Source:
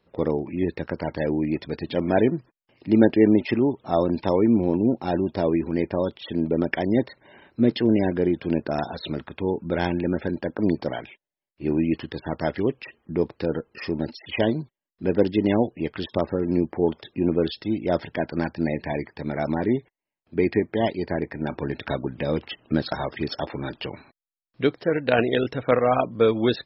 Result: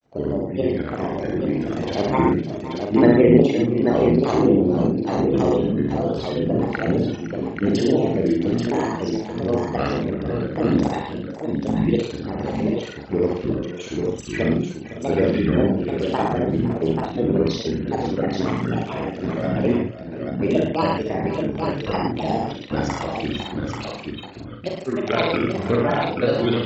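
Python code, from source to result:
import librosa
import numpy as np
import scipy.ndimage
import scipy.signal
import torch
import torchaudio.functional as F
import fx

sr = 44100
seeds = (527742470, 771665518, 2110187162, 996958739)

p1 = fx.rotary(x, sr, hz=0.9)
p2 = fx.granulator(p1, sr, seeds[0], grain_ms=100.0, per_s=20.0, spray_ms=36.0, spread_st=7)
p3 = fx.doubler(p2, sr, ms=42.0, db=-5)
p4 = p3 + fx.echo_multitap(p3, sr, ms=(67, 110, 511, 556, 835, 895), db=(-4.0, -5.0, -15.5, -14.0, -5.0, -13.5), dry=0)
y = F.gain(torch.from_numpy(p4), 1.5).numpy()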